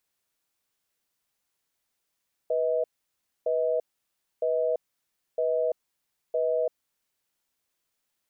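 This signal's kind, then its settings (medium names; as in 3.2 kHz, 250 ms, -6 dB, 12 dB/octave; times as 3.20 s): cadence 490 Hz, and 635 Hz, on 0.34 s, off 0.62 s, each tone -25.5 dBFS 4.39 s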